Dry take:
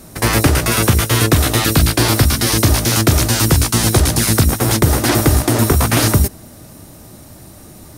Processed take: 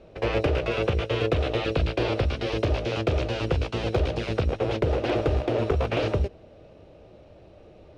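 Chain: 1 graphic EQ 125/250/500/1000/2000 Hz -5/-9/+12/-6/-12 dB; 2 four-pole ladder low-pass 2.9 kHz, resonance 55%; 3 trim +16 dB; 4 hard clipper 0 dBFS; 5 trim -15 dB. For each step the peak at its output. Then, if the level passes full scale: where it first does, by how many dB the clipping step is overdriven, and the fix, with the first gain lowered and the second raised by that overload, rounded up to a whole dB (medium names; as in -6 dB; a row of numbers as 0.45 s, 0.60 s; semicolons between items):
+1.5 dBFS, -10.0 dBFS, +6.0 dBFS, 0.0 dBFS, -15.0 dBFS; step 1, 6.0 dB; step 3 +10 dB, step 5 -9 dB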